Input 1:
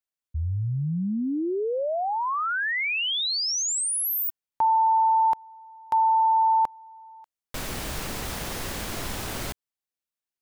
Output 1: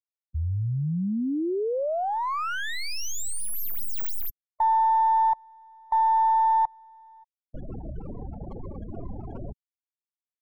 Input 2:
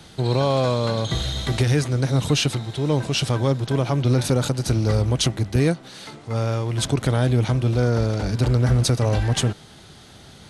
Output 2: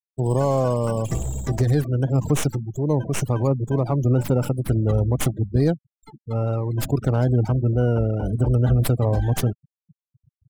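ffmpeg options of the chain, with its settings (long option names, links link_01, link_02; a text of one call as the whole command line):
ffmpeg -i in.wav -filter_complex "[0:a]afftfilt=real='re*gte(hypot(re,im),0.0562)':imag='im*gte(hypot(re,im),0.0562)':win_size=1024:overlap=0.75,acrossover=split=1700[link_01][link_02];[link_02]aeval=exprs='abs(val(0))':channel_layout=same[link_03];[link_01][link_03]amix=inputs=2:normalize=0" out.wav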